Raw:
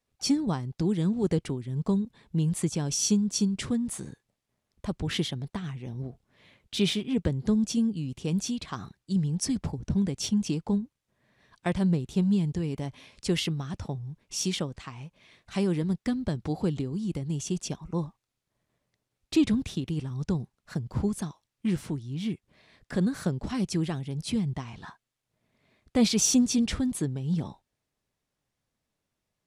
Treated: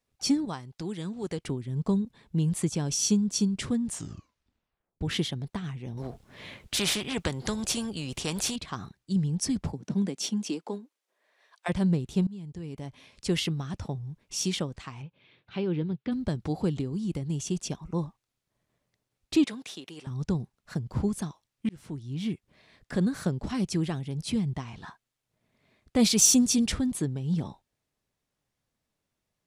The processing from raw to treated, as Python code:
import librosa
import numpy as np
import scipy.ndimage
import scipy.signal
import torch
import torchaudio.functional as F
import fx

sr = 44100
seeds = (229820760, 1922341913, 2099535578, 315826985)

y = fx.low_shelf(x, sr, hz=500.0, db=-11.0, at=(0.45, 1.45))
y = fx.spectral_comp(y, sr, ratio=2.0, at=(5.97, 8.56))
y = fx.highpass(y, sr, hz=fx.line((9.72, 140.0), (11.68, 580.0)), slope=24, at=(9.72, 11.68), fade=0.02)
y = fx.cabinet(y, sr, low_hz=110.0, low_slope=12, high_hz=3500.0, hz=(130.0, 210.0, 670.0, 1100.0, 1900.0), db=(4, -7, -8, -7, -8), at=(15.01, 16.11), fade=0.02)
y = fx.highpass(y, sr, hz=530.0, slope=12, at=(19.44, 20.07))
y = fx.high_shelf(y, sr, hz=7300.0, db=11.5, at=(25.99, 26.72))
y = fx.edit(y, sr, fx.tape_stop(start_s=3.82, length_s=1.19),
    fx.fade_in_from(start_s=12.27, length_s=1.11, floor_db=-21.5),
    fx.fade_in_span(start_s=21.69, length_s=0.42), tone=tone)